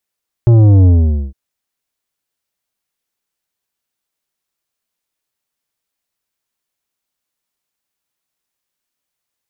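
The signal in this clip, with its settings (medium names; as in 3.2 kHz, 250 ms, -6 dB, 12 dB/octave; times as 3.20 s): sub drop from 120 Hz, over 0.86 s, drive 10 dB, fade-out 0.47 s, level -5.5 dB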